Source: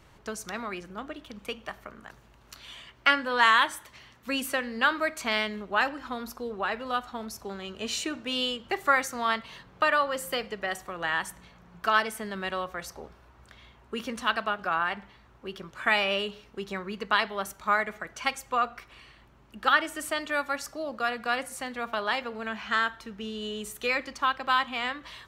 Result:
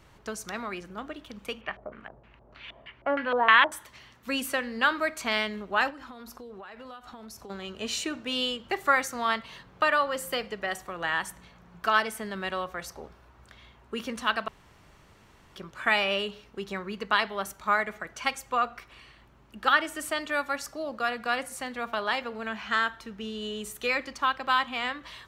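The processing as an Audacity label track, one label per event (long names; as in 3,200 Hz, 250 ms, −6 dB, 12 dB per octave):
1.610000	3.720000	auto-filter low-pass square 3.2 Hz 650–2,500 Hz
5.900000	7.500000	downward compressor 12 to 1, threshold −40 dBFS
14.480000	15.560000	fill with room tone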